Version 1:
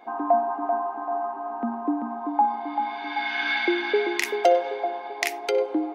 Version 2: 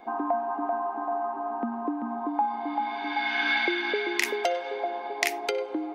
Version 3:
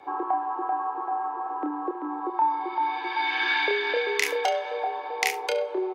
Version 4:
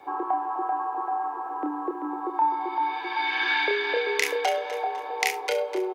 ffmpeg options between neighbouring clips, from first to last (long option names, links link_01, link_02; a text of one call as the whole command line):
ffmpeg -i in.wav -filter_complex "[0:a]lowshelf=frequency=200:gain=10,acrossover=split=1100|1900[link_01][link_02][link_03];[link_01]acompressor=threshold=-28dB:ratio=6[link_04];[link_04][link_02][link_03]amix=inputs=3:normalize=0" out.wav
ffmpeg -i in.wav -af "aecho=1:1:29|71:0.562|0.141,afreqshift=62" out.wav
ffmpeg -i in.wav -af "acrusher=bits=11:mix=0:aa=0.000001,aecho=1:1:252|504|756|1008:0.224|0.0873|0.0341|0.0133" out.wav